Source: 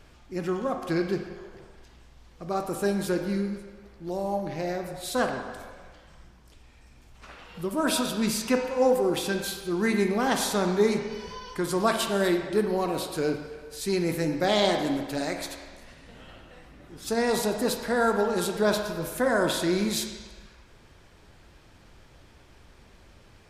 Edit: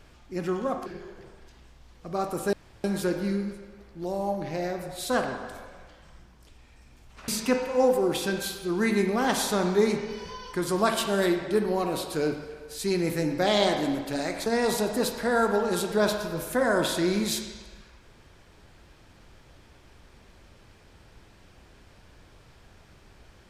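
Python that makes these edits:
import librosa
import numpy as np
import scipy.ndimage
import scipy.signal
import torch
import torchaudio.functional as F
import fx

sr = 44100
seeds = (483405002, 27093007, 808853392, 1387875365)

y = fx.edit(x, sr, fx.cut(start_s=0.86, length_s=0.36),
    fx.insert_room_tone(at_s=2.89, length_s=0.31),
    fx.cut(start_s=7.33, length_s=0.97),
    fx.cut(start_s=15.48, length_s=1.63), tone=tone)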